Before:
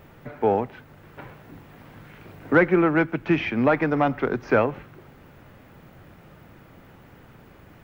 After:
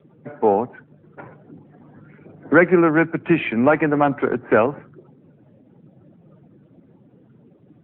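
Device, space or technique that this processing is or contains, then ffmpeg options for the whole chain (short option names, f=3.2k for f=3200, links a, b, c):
mobile call with aggressive noise cancelling: -af "highpass=140,afftdn=nr=21:nf=-44,volume=4.5dB" -ar 8000 -c:a libopencore_amrnb -b:a 10200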